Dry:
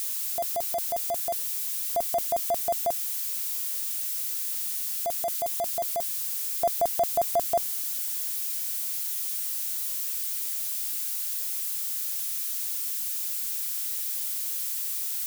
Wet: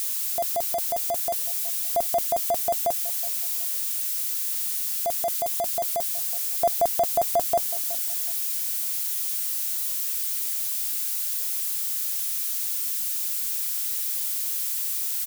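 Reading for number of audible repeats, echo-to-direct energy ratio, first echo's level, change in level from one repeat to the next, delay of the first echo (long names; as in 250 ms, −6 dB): 2, −16.0 dB, −16.0 dB, −12.0 dB, 371 ms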